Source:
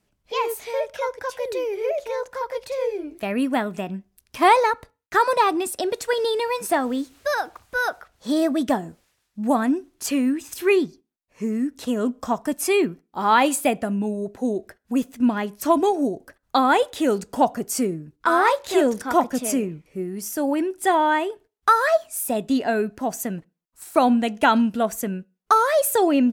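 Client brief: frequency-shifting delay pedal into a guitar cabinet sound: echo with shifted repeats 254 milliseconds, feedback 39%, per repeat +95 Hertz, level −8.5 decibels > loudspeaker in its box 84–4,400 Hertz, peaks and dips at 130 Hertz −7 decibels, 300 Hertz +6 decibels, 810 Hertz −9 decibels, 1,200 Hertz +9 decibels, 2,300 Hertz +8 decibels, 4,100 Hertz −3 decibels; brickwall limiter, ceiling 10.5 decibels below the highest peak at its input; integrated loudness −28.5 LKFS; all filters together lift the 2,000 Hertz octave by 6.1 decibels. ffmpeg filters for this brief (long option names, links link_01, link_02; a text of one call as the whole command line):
ffmpeg -i in.wav -filter_complex "[0:a]equalizer=frequency=2000:width_type=o:gain=3.5,alimiter=limit=-13.5dB:level=0:latency=1,asplit=5[link_01][link_02][link_03][link_04][link_05];[link_02]adelay=254,afreqshift=95,volume=-8.5dB[link_06];[link_03]adelay=508,afreqshift=190,volume=-16.7dB[link_07];[link_04]adelay=762,afreqshift=285,volume=-24.9dB[link_08];[link_05]adelay=1016,afreqshift=380,volume=-33dB[link_09];[link_01][link_06][link_07][link_08][link_09]amix=inputs=5:normalize=0,highpass=84,equalizer=frequency=130:width_type=q:width=4:gain=-7,equalizer=frequency=300:width_type=q:width=4:gain=6,equalizer=frequency=810:width_type=q:width=4:gain=-9,equalizer=frequency=1200:width_type=q:width=4:gain=9,equalizer=frequency=2300:width_type=q:width=4:gain=8,equalizer=frequency=4100:width_type=q:width=4:gain=-3,lowpass=frequency=4400:width=0.5412,lowpass=frequency=4400:width=1.3066,volume=-6.5dB" out.wav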